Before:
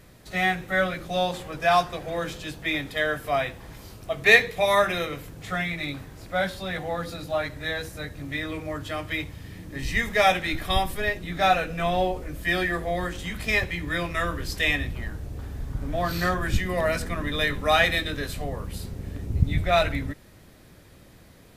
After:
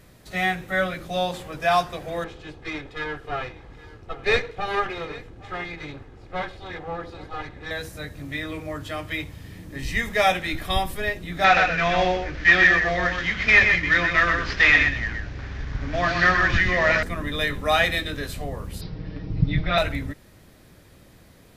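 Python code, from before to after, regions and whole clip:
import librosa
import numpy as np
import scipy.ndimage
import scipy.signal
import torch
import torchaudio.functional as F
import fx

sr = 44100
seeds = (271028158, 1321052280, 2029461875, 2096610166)

y = fx.chain(x, sr, fx.lower_of_two(delay_ms=2.4),
    fx.spacing_loss(db_at_10k=22),
    fx.echo_single(ms=818, db=-19.0), at=(2.24, 7.71))
y = fx.chain(y, sr, fx.cvsd(bps=32000),
    fx.peak_eq(hz=1900.0, db=12.0, octaves=1.3),
    fx.echo_single(ms=125, db=-5.5), at=(11.44, 17.03))
y = fx.chain(y, sr, fx.steep_lowpass(hz=5500.0, slope=96),
    fx.comb(ms=6.4, depth=0.91), at=(18.81, 19.78))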